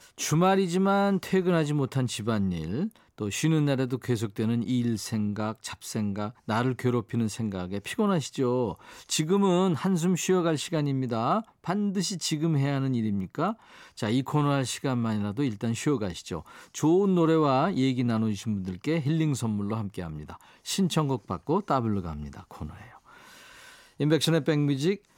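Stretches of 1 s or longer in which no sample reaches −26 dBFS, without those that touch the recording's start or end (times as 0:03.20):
0:22.63–0:24.00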